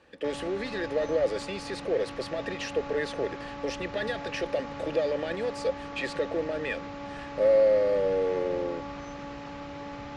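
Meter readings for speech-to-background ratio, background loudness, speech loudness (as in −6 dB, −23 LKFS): 10.0 dB, −39.5 LKFS, −29.5 LKFS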